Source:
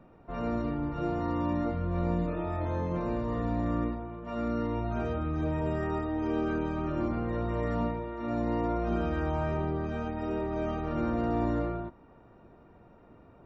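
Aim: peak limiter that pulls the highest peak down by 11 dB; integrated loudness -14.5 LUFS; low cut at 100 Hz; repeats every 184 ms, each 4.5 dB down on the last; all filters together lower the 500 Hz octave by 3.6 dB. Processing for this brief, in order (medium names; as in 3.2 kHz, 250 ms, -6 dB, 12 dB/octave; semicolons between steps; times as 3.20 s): high-pass 100 Hz; peaking EQ 500 Hz -5 dB; peak limiter -31.5 dBFS; feedback delay 184 ms, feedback 60%, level -4.5 dB; trim +23 dB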